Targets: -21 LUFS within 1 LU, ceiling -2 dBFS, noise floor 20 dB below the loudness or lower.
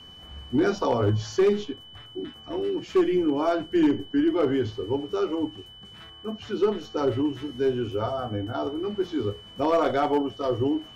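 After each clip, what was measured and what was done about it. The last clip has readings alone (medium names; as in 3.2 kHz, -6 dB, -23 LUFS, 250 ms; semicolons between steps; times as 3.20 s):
clipped samples 0.7%; clipping level -15.0 dBFS; steady tone 3 kHz; tone level -45 dBFS; loudness -26.0 LUFS; peak level -15.0 dBFS; loudness target -21.0 LUFS
-> clip repair -15 dBFS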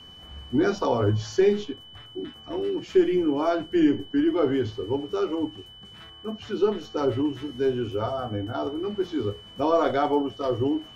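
clipped samples 0.0%; steady tone 3 kHz; tone level -45 dBFS
-> band-stop 3 kHz, Q 30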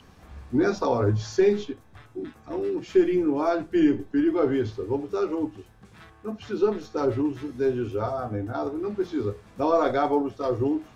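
steady tone not found; loudness -25.5 LUFS; peak level -10.0 dBFS; loudness target -21.0 LUFS
-> trim +4.5 dB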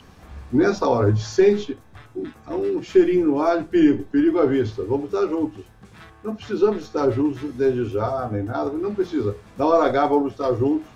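loudness -21.0 LUFS; peak level -5.5 dBFS; noise floor -49 dBFS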